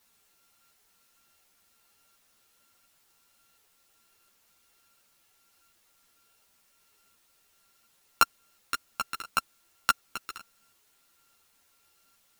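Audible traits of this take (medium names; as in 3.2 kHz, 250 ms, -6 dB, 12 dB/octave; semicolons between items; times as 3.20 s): a buzz of ramps at a fixed pitch in blocks of 32 samples; tremolo saw up 1.4 Hz, depth 80%; a quantiser's noise floor 12-bit, dither triangular; a shimmering, thickened sound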